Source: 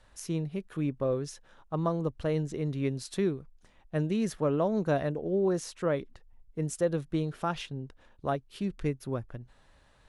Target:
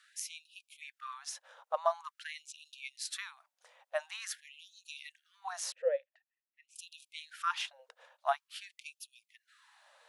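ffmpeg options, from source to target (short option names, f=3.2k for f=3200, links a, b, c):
-filter_complex "[0:a]asettb=1/sr,asplit=3[a][b][c];[a]atrim=end=5.724[d];[b]atrim=start=5.72:end=6.76,asetpts=PTS-STARTPTS,afade=t=in:d=0.004:c=qsin,afade=t=out:st=1.036:d=0.004:c=qsin,asplit=3[e][f][g];[e]bandpass=f=530:t=q:w=8,volume=0dB[h];[f]bandpass=f=1.84k:t=q:w=8,volume=-6dB[i];[g]bandpass=f=2.48k:t=q:w=8,volume=-9dB[j];[h][i][j]amix=inputs=3:normalize=0[k];[c]atrim=start=6.756[l];[d][k]acrossfade=d=0.004:c1=hsin:c2=qsin[m];[m][l]acrossfade=d=0.004:c1=qsin:c2=hsin,afftfilt=real='re*gte(b*sr/1024,460*pow(2500/460,0.5+0.5*sin(2*PI*0.47*pts/sr)))':imag='im*gte(b*sr/1024,460*pow(2500/460,0.5+0.5*sin(2*PI*0.47*pts/sr)))':win_size=1024:overlap=0.75,volume=3dB"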